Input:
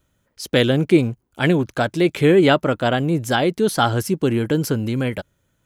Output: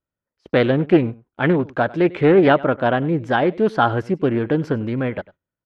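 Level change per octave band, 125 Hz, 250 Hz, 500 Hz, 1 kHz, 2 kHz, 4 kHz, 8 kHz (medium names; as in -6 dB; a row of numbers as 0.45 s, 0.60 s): -2.0 dB, 0.0 dB, +1.0 dB, +2.0 dB, 0.0 dB, -8.0 dB, under -20 dB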